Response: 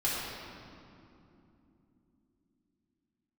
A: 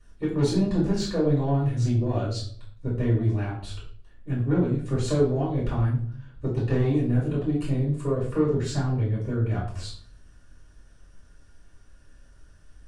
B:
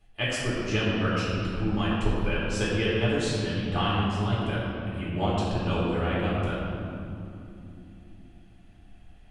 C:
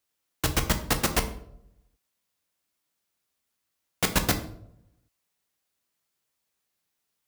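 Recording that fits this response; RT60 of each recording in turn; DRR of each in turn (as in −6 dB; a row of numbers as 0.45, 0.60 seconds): B; 0.55, 3.0, 0.75 seconds; −7.0, −8.5, 6.5 decibels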